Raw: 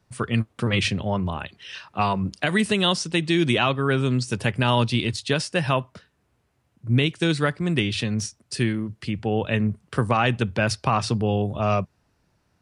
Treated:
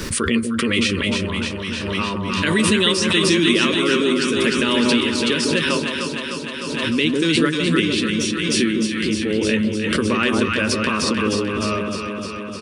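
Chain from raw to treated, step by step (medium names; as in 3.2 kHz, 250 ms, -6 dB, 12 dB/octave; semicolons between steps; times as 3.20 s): static phaser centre 310 Hz, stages 4; doubling 13 ms -11 dB; echo whose repeats swap between lows and highs 152 ms, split 990 Hz, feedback 85%, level -3 dB; swell ahead of each attack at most 28 dB/s; trim +4 dB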